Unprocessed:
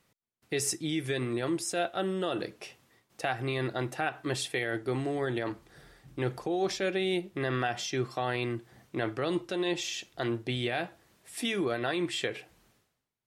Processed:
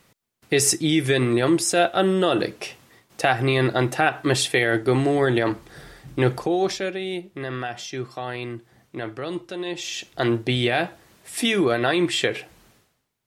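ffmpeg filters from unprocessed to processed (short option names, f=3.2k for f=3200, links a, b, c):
-af "volume=21dB,afade=t=out:st=6.25:d=0.71:silence=0.281838,afade=t=in:st=9.74:d=0.5:silence=0.334965"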